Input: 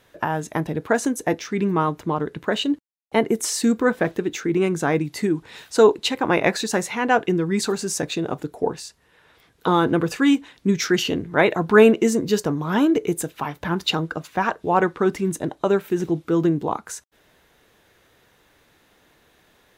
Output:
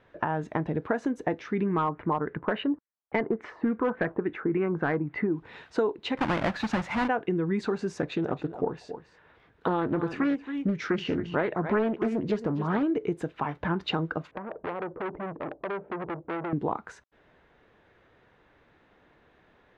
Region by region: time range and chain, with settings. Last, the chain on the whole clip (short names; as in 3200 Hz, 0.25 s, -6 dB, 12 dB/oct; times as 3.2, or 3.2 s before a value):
1.66–5.33 LFO low-pass sine 3.5 Hz 940–2200 Hz + overloaded stage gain 11.5 dB
6.17–7.08 half-waves squared off + bell 420 Hz -14.5 dB 0.55 oct
7.97–12.83 echo 0.272 s -14.5 dB + Doppler distortion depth 0.37 ms
14.31–16.53 compressor 12:1, threshold -25 dBFS + synth low-pass 560 Hz, resonance Q 2.2 + core saturation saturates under 1900 Hz
whole clip: LPF 2100 Hz 12 dB/oct; compressor 6:1, threshold -22 dBFS; gain -1.5 dB